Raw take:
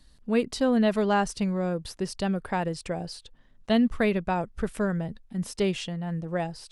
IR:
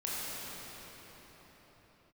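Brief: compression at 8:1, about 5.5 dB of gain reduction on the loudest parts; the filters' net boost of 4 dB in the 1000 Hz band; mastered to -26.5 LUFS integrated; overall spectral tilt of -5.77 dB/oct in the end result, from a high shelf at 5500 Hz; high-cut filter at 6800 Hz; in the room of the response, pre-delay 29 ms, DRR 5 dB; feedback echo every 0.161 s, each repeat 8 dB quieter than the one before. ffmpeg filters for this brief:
-filter_complex "[0:a]lowpass=6.8k,equalizer=f=1k:t=o:g=5.5,highshelf=f=5.5k:g=-5.5,acompressor=threshold=-23dB:ratio=8,aecho=1:1:161|322|483|644|805:0.398|0.159|0.0637|0.0255|0.0102,asplit=2[a][b];[1:a]atrim=start_sample=2205,adelay=29[c];[b][c]afir=irnorm=-1:irlink=0,volume=-11dB[d];[a][d]amix=inputs=2:normalize=0,volume=2dB"

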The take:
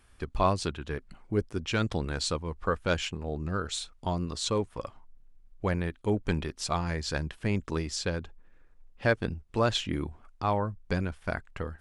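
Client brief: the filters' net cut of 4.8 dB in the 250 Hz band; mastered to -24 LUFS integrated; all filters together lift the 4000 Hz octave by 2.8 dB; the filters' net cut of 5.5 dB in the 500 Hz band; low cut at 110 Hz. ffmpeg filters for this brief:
-af "highpass=110,equalizer=f=250:t=o:g=-5,equalizer=f=500:t=o:g=-5.5,equalizer=f=4k:t=o:g=3.5,volume=9.5dB"

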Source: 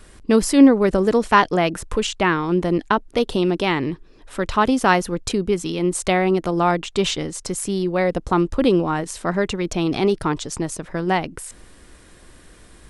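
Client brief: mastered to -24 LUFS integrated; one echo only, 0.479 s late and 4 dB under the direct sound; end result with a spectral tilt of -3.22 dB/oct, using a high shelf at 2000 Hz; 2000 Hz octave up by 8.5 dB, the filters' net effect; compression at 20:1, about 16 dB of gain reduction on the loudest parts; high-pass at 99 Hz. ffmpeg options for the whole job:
-af "highpass=99,highshelf=f=2k:g=7,equalizer=f=2k:t=o:g=6.5,acompressor=threshold=-21dB:ratio=20,aecho=1:1:479:0.631,volume=1dB"

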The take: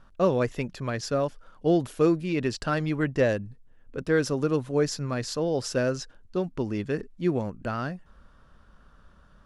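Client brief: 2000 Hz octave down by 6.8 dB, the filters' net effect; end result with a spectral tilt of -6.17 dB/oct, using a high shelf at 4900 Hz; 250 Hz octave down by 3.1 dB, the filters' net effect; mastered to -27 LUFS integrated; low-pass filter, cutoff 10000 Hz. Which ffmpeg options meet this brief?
-af "lowpass=10k,equalizer=f=250:t=o:g=-4.5,equalizer=f=2k:t=o:g=-8.5,highshelf=f=4.9k:g=-7,volume=3dB"

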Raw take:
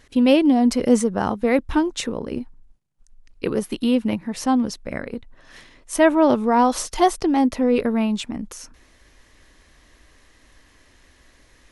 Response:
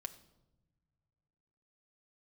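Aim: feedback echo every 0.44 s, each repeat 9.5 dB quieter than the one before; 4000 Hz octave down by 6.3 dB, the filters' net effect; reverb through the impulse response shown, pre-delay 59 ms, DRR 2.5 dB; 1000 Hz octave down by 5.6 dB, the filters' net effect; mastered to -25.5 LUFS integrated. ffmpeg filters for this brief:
-filter_complex "[0:a]equalizer=f=1k:t=o:g=-7.5,equalizer=f=4k:t=o:g=-8.5,aecho=1:1:440|880|1320|1760:0.335|0.111|0.0365|0.012,asplit=2[a][b];[1:a]atrim=start_sample=2205,adelay=59[c];[b][c]afir=irnorm=-1:irlink=0,volume=1dB[d];[a][d]amix=inputs=2:normalize=0,volume=-6dB"

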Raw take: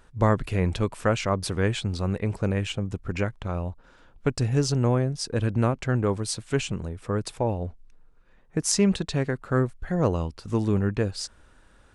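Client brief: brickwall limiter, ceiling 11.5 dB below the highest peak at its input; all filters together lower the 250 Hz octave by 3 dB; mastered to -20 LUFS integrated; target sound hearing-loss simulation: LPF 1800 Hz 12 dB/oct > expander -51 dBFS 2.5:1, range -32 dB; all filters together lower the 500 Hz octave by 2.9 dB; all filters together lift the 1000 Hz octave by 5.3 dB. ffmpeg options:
-af "equalizer=f=250:t=o:g=-3.5,equalizer=f=500:t=o:g=-4.5,equalizer=f=1k:t=o:g=8.5,alimiter=limit=-16dB:level=0:latency=1,lowpass=1.8k,agate=range=-32dB:threshold=-51dB:ratio=2.5,volume=10dB"

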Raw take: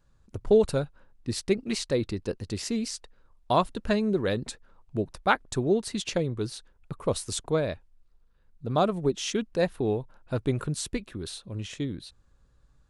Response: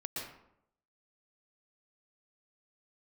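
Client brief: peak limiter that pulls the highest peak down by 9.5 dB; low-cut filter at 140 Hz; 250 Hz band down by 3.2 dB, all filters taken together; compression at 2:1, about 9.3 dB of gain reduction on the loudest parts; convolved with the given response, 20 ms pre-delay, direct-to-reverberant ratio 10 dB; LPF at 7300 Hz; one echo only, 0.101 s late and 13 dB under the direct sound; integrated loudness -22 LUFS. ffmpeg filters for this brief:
-filter_complex "[0:a]highpass=140,lowpass=7.3k,equalizer=f=250:t=o:g=-3.5,acompressor=threshold=-34dB:ratio=2,alimiter=level_in=1dB:limit=-24dB:level=0:latency=1,volume=-1dB,aecho=1:1:101:0.224,asplit=2[a][b];[1:a]atrim=start_sample=2205,adelay=20[c];[b][c]afir=irnorm=-1:irlink=0,volume=-11dB[d];[a][d]amix=inputs=2:normalize=0,volume=15.5dB"

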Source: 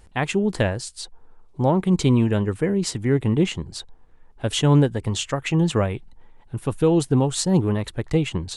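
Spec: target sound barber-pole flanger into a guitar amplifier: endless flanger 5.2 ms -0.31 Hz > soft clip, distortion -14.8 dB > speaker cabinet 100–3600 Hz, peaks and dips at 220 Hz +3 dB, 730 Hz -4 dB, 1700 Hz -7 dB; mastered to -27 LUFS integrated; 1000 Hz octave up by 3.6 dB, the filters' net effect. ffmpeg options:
-filter_complex "[0:a]equalizer=f=1k:t=o:g=6.5,asplit=2[a][b];[b]adelay=5.2,afreqshift=-0.31[c];[a][c]amix=inputs=2:normalize=1,asoftclip=threshold=-16dB,highpass=100,equalizer=f=220:t=q:w=4:g=3,equalizer=f=730:t=q:w=4:g=-4,equalizer=f=1.7k:t=q:w=4:g=-7,lowpass=f=3.6k:w=0.5412,lowpass=f=3.6k:w=1.3066,volume=-0.5dB"

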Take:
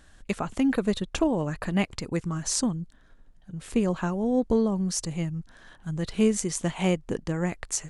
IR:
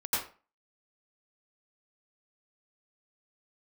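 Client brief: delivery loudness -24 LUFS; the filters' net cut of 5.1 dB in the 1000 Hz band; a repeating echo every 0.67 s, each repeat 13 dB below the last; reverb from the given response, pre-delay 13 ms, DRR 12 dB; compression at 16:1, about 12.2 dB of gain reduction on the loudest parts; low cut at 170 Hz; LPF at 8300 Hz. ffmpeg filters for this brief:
-filter_complex "[0:a]highpass=170,lowpass=8.3k,equalizer=f=1k:t=o:g=-7,acompressor=threshold=-32dB:ratio=16,aecho=1:1:670|1340|2010:0.224|0.0493|0.0108,asplit=2[a][b];[1:a]atrim=start_sample=2205,adelay=13[c];[b][c]afir=irnorm=-1:irlink=0,volume=-20dB[d];[a][d]amix=inputs=2:normalize=0,volume=13.5dB"

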